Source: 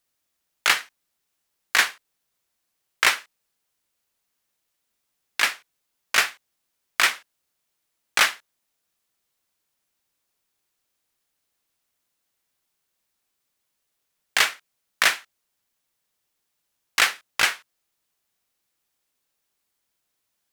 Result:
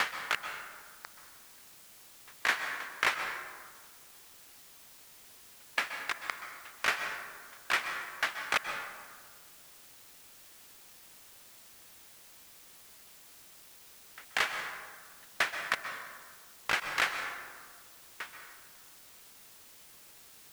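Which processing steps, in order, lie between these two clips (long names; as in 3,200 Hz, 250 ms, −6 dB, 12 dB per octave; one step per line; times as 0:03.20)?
slices reordered back to front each 175 ms, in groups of 5
in parallel at +1.5 dB: downward compressor, threshold −34 dBFS, peak gain reduction 19.5 dB
on the sum: high-shelf EQ 2,900 Hz −12 dB
dense smooth reverb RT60 1.6 s, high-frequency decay 0.5×, pre-delay 115 ms, DRR 5.5 dB
bit-depth reduction 8 bits, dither triangular
level −7 dB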